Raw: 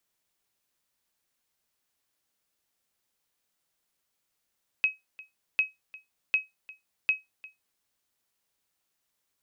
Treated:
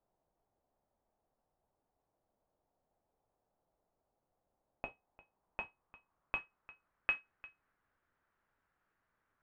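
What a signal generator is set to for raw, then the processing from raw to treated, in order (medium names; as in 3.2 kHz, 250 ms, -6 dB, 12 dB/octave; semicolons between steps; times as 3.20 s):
sonar ping 2.55 kHz, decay 0.18 s, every 0.75 s, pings 4, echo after 0.35 s, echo -21 dB -15.5 dBFS
bass shelf 81 Hz +11 dB; in parallel at -11.5 dB: sample-rate reducer 5.4 kHz, jitter 20%; on the sum: low-pass sweep 730 Hz -> 1.5 kHz, 4.82–7.20 s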